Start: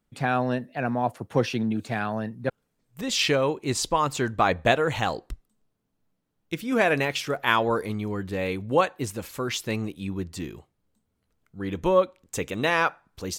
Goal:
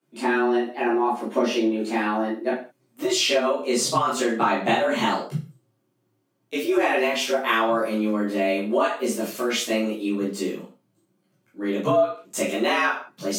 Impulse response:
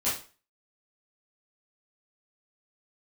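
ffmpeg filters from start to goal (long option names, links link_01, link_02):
-filter_complex "[1:a]atrim=start_sample=2205,afade=type=out:start_time=0.27:duration=0.01,atrim=end_sample=12348[link_01];[0:a][link_01]afir=irnorm=-1:irlink=0,afreqshift=110,acrossover=split=190[link_02][link_03];[link_03]acompressor=threshold=-17dB:ratio=3[link_04];[link_02][link_04]amix=inputs=2:normalize=0,volume=-2.5dB"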